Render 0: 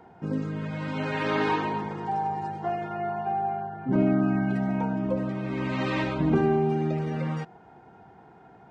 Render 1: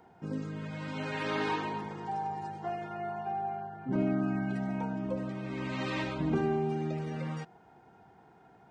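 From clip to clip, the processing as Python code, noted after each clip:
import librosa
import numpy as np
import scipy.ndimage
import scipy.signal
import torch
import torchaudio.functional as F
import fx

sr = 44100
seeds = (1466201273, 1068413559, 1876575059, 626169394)

y = fx.high_shelf(x, sr, hz=4000.0, db=9.0)
y = y * librosa.db_to_amplitude(-7.0)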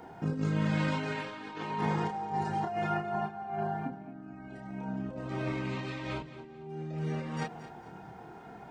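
y = fx.over_compress(x, sr, threshold_db=-39.0, ratio=-0.5)
y = fx.chorus_voices(y, sr, voices=6, hz=0.23, base_ms=29, depth_ms=4.4, mix_pct=40)
y = fx.echo_feedback(y, sr, ms=222, feedback_pct=34, wet_db=-14)
y = y * librosa.db_to_amplitude(8.0)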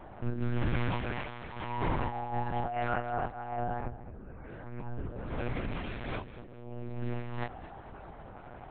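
y = fx.add_hum(x, sr, base_hz=50, snr_db=22)
y = fx.lpc_monotone(y, sr, seeds[0], pitch_hz=120.0, order=8)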